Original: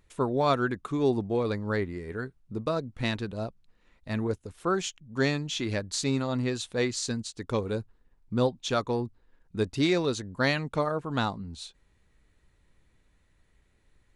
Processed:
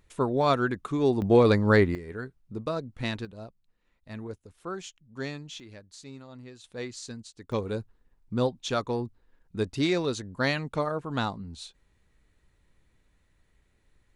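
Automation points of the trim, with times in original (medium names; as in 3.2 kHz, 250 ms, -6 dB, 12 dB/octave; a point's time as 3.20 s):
+1 dB
from 1.22 s +9 dB
from 1.95 s -2 dB
from 3.25 s -9 dB
from 5.60 s -17 dB
from 6.64 s -9 dB
from 7.52 s -1 dB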